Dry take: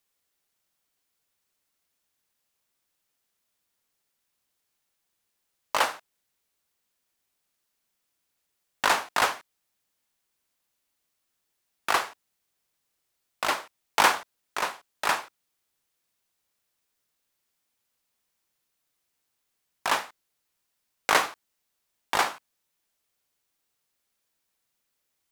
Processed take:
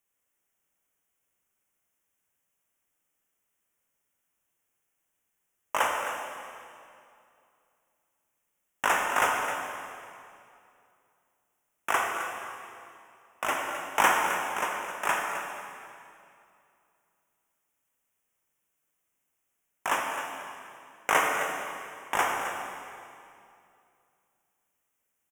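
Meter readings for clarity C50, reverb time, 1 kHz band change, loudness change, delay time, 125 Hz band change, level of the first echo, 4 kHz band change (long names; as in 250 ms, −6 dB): 1.5 dB, 2.5 s, 0.0 dB, −2.5 dB, 262 ms, 0.0 dB, −10.5 dB, −5.5 dB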